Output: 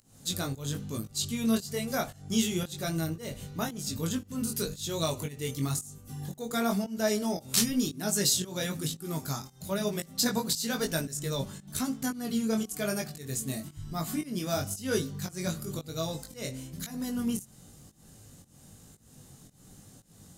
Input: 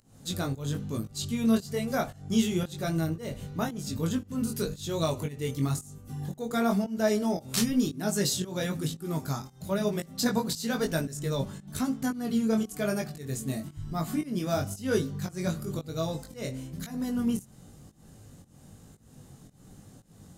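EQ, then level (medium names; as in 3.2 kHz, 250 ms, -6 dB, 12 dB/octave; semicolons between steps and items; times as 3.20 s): treble shelf 2.6 kHz +8.5 dB; -3.0 dB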